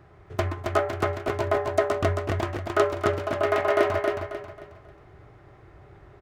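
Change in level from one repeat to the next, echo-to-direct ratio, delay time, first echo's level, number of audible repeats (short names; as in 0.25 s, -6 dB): -9.5 dB, -3.5 dB, 0.27 s, -4.0 dB, 4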